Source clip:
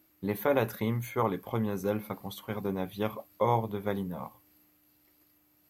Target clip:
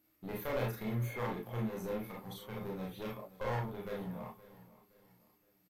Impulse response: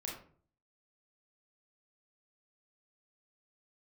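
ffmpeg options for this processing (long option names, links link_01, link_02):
-filter_complex "[0:a]aeval=exprs='clip(val(0),-1,0.0224)':channel_layout=same,aecho=1:1:518|1036|1554:0.119|0.0464|0.0181[link_01];[1:a]atrim=start_sample=2205,atrim=end_sample=3528[link_02];[link_01][link_02]afir=irnorm=-1:irlink=0,volume=-4dB"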